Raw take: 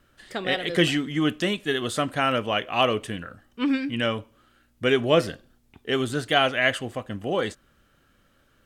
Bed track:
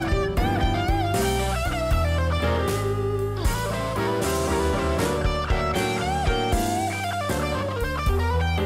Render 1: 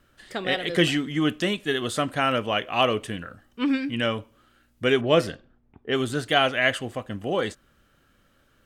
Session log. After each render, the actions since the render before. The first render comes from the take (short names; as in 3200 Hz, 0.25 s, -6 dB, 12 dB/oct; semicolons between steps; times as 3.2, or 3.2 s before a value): 5.01–5.96 low-pass opened by the level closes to 1100 Hz, open at -17.5 dBFS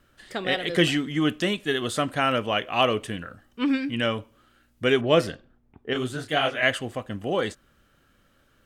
5.93–6.63 detuned doubles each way 56 cents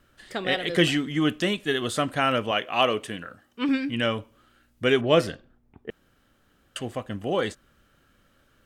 2.51–3.69 HPF 210 Hz 6 dB/oct; 5.9–6.76 room tone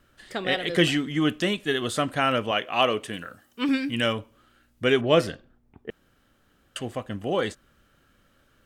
3.13–4.13 high shelf 5900 Hz +11.5 dB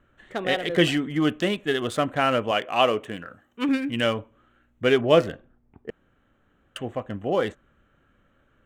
Wiener smoothing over 9 samples; dynamic EQ 620 Hz, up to +3 dB, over -36 dBFS, Q 0.9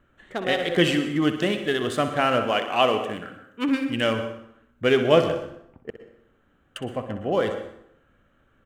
feedback echo 62 ms, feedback 49%, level -11 dB; plate-style reverb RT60 0.72 s, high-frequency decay 0.7×, pre-delay 0.1 s, DRR 10.5 dB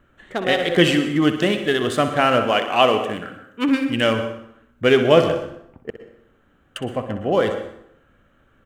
gain +4.5 dB; limiter -1 dBFS, peak gain reduction 2 dB